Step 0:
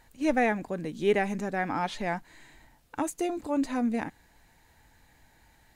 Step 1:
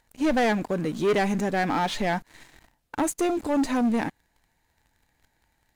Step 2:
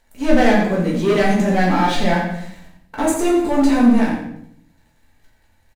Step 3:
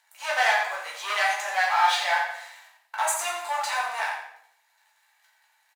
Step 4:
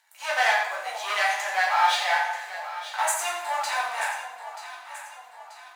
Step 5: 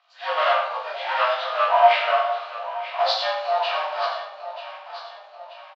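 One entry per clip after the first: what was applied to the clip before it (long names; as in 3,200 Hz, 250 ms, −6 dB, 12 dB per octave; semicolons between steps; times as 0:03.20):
leveller curve on the samples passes 3; level −3.5 dB
on a send: repeating echo 87 ms, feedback 30%, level −9 dB; on the sum: rectangular room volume 120 cubic metres, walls mixed, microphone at 1.6 metres
Butterworth high-pass 790 Hz 36 dB per octave
delay that swaps between a low-pass and a high-pass 467 ms, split 900 Hz, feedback 69%, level −9.5 dB
partials spread apart or drawn together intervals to 82%; loudspeaker in its box 280–4,700 Hz, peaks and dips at 380 Hz −9 dB, 670 Hz +5 dB, 950 Hz +5 dB, 3,000 Hz +9 dB, 4,300 Hz +4 dB; double-tracking delay 17 ms −2.5 dB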